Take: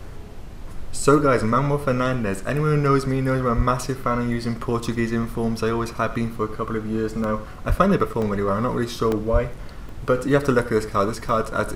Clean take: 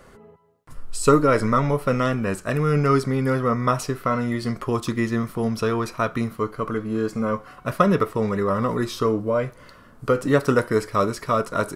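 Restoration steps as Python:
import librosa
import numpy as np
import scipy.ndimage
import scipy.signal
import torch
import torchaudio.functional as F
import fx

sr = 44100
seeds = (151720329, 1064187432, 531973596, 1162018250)

y = fx.highpass(x, sr, hz=140.0, slope=24, at=(3.56, 3.68), fade=0.02)
y = fx.highpass(y, sr, hz=140.0, slope=24, at=(7.68, 7.8), fade=0.02)
y = fx.highpass(y, sr, hz=140.0, slope=24, at=(9.32, 9.44), fade=0.02)
y = fx.fix_interpolate(y, sr, at_s=(2.34, 5.9, 7.24, 8.22, 9.12, 9.57, 9.89, 11.29), length_ms=1.3)
y = fx.noise_reduce(y, sr, print_start_s=0.14, print_end_s=0.64, reduce_db=12.0)
y = fx.fix_echo_inverse(y, sr, delay_ms=92, level_db=-16.0)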